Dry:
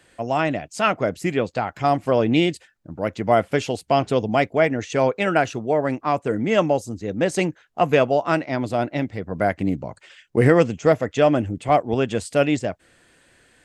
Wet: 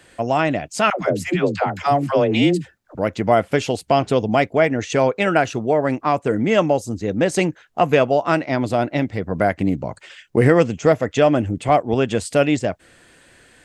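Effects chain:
in parallel at +1.5 dB: downward compressor, threshold −24 dBFS, peak gain reduction 13.5 dB
0:00.90–0:02.95: on the sum: all-pass dispersion lows, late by 113 ms, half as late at 450 Hz
level −1 dB

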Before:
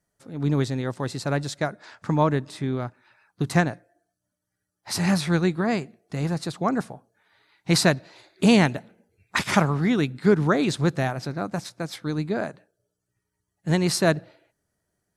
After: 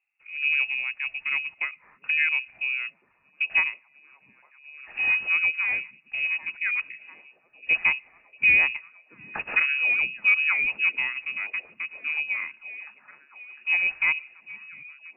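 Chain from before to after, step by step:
tilt shelving filter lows +6.5 dB
voice inversion scrambler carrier 2,700 Hz
echo through a band-pass that steps 703 ms, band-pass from 180 Hz, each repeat 0.7 octaves, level −6 dB
level −7.5 dB

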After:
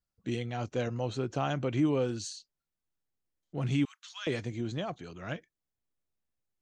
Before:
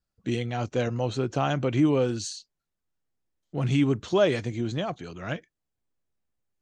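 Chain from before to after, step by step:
0:03.85–0:04.27: Bessel high-pass filter 2,000 Hz, order 8
level −5.5 dB

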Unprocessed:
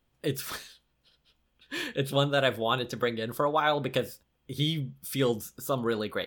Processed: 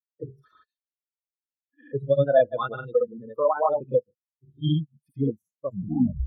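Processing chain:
turntable brake at the end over 0.56 s
gate on every frequency bin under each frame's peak −15 dB strong
granular cloud 123 ms, grains 20 per second, spray 100 ms, pitch spread up and down by 0 semitones
every bin expanded away from the loudest bin 2.5 to 1
level +8 dB

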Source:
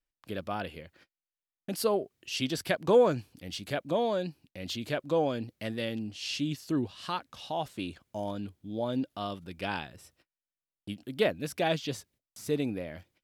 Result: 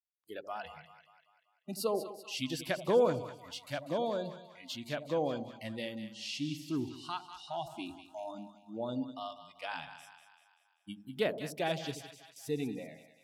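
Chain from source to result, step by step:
noise reduction from a noise print of the clip's start 27 dB
echo with a time of its own for lows and highs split 800 Hz, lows 81 ms, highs 194 ms, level −10.5 dB
level −5 dB

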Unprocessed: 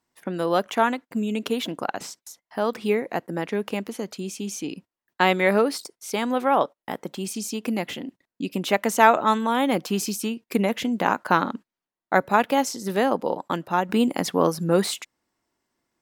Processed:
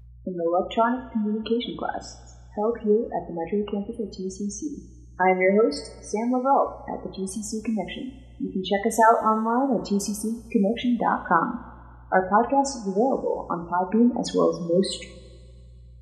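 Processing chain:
mains hum 60 Hz, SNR 20 dB
gate on every frequency bin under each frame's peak −10 dB strong
coupled-rooms reverb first 0.38 s, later 2 s, from −18 dB, DRR 6 dB

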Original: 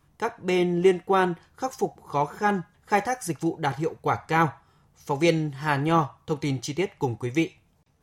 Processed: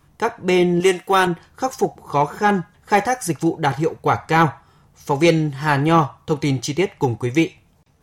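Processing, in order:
0:00.80–0:01.27: spectral tilt +3 dB per octave
soft clipping −11 dBFS, distortion −22 dB
level +7.5 dB

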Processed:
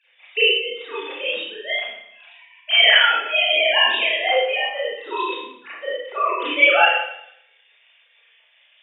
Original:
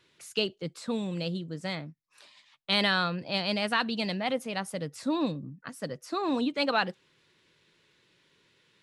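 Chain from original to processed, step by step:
three sine waves on the formant tracks
high-pass filter 500 Hz 24 dB per octave
high shelf with overshoot 1,800 Hz +7 dB, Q 1.5
convolution reverb RT60 0.75 s, pre-delay 27 ms, DRR −10 dB

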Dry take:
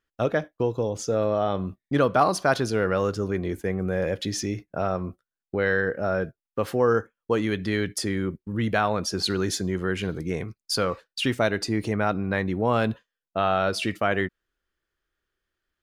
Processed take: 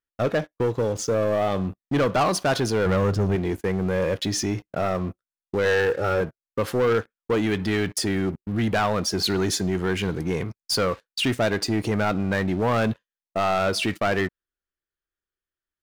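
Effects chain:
0:02.86–0:03.36: bass and treble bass +8 dB, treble −4 dB
0:05.65–0:06.21: comb filter 2.3 ms, depth 76%
leveller curve on the samples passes 3
level −7 dB

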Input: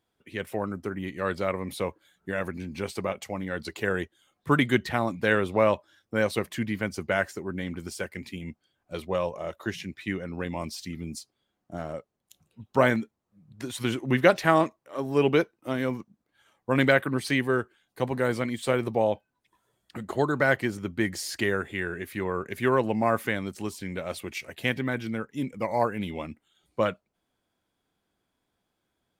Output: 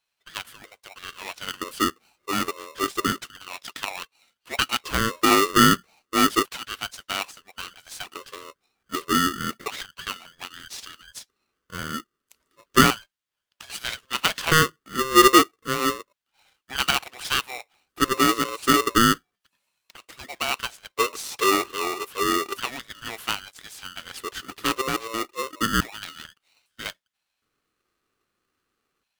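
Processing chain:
dynamic equaliser 330 Hz, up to +3 dB, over −34 dBFS, Q 1.2
auto-filter high-pass square 0.31 Hz 420–2,300 Hz
ring modulator with a square carrier 790 Hz

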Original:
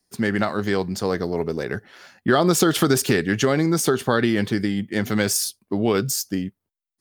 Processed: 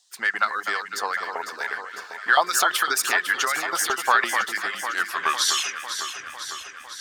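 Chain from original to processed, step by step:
turntable brake at the end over 2.29 s
reverb reduction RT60 0.71 s
auto-filter high-pass saw up 5.9 Hz 800–2,000 Hz
noise in a band 3,300–8,300 Hz −64 dBFS
on a send: delay that swaps between a low-pass and a high-pass 251 ms, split 1,500 Hz, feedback 80%, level −7 dB

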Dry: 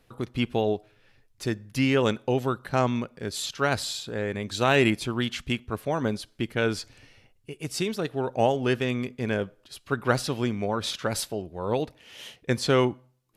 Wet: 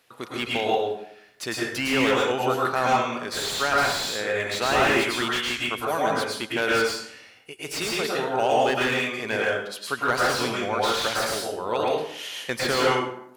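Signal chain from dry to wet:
in parallel at +2 dB: brickwall limiter −16 dBFS, peak gain reduction 7 dB
on the sum: high-pass filter 1,100 Hz 6 dB per octave
dense smooth reverb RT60 0.7 s, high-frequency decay 0.65×, pre-delay 95 ms, DRR −4 dB
slew-rate limiting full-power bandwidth 210 Hz
level −1 dB

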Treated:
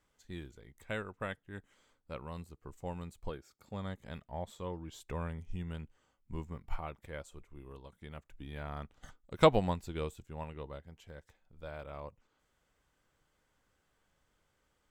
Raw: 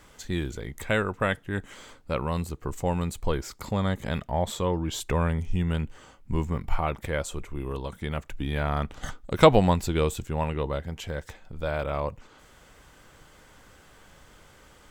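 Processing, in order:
0:03.30–0:03.74: notch comb filter 1,000 Hz
expander for the loud parts 1.5 to 1, over −42 dBFS
level −7 dB

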